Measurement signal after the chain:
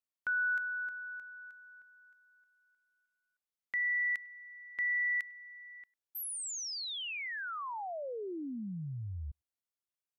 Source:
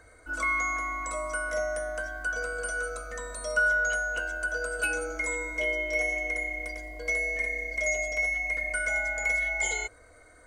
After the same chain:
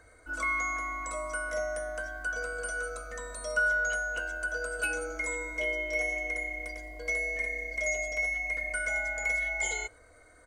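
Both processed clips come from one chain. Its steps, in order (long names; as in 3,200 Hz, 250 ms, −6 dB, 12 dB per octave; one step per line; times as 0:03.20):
far-end echo of a speakerphone 100 ms, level −27 dB
level −2.5 dB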